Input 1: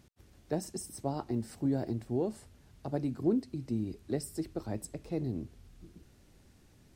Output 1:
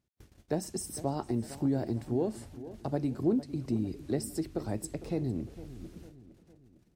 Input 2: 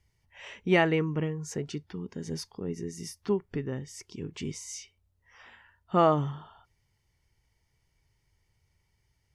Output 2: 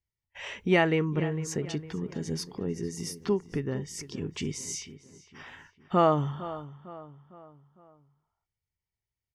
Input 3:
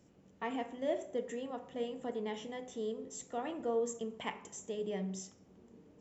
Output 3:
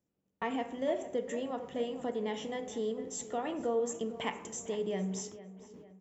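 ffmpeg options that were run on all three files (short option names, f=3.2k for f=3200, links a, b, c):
-filter_complex "[0:a]agate=range=-26dB:threshold=-57dB:ratio=16:detection=peak,asplit=2[a][b];[b]acompressor=threshold=-40dB:ratio=6,volume=2dB[c];[a][c]amix=inputs=2:normalize=0,asplit=2[d][e];[e]adelay=455,lowpass=f=3k:p=1,volume=-15dB,asplit=2[f][g];[g]adelay=455,lowpass=f=3k:p=1,volume=0.47,asplit=2[h][i];[i]adelay=455,lowpass=f=3k:p=1,volume=0.47,asplit=2[j][k];[k]adelay=455,lowpass=f=3k:p=1,volume=0.47[l];[d][f][h][j][l]amix=inputs=5:normalize=0,volume=-1dB"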